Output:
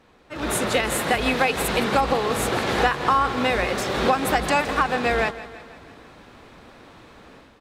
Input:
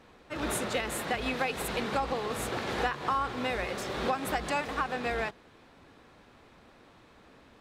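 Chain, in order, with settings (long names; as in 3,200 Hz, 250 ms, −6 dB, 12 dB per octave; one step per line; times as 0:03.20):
automatic gain control gain up to 10 dB
repeating echo 165 ms, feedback 57%, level −16 dB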